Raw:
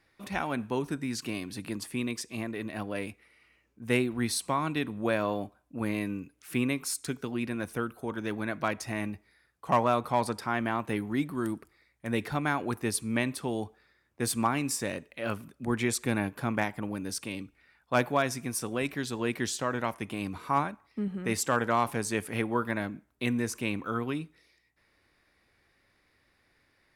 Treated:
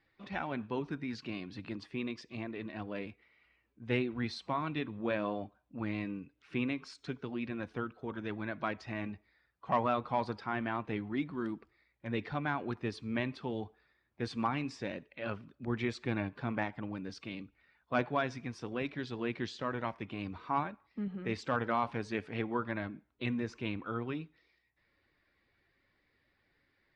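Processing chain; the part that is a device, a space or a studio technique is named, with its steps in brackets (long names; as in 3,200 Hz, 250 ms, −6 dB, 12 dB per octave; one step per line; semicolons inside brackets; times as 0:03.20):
clip after many re-uploads (low-pass filter 4,400 Hz 24 dB per octave; spectral magnitudes quantised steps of 15 dB)
level −5 dB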